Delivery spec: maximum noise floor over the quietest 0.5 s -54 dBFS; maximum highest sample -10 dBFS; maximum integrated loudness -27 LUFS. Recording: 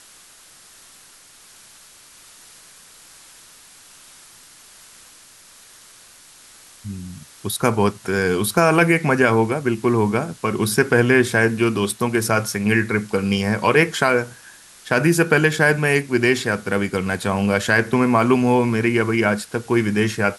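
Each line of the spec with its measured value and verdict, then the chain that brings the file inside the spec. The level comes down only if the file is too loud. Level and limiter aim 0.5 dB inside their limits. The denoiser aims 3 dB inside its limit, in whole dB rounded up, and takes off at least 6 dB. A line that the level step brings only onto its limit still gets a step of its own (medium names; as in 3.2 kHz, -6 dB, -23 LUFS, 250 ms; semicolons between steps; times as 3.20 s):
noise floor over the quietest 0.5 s -48 dBFS: fail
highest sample -3.5 dBFS: fail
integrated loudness -18.5 LUFS: fail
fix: trim -9 dB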